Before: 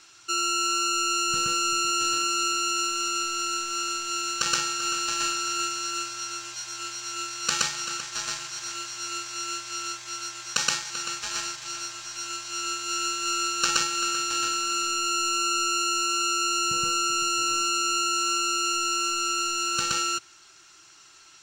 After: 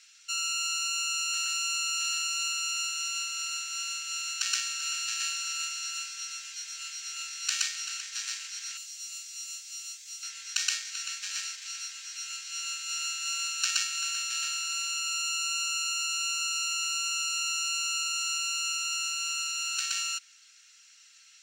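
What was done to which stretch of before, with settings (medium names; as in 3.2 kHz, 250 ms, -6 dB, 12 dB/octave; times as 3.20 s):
8.77–10.23 s: differentiator
whole clip: Chebyshev high-pass 1.9 kHz, order 3; trim -2.5 dB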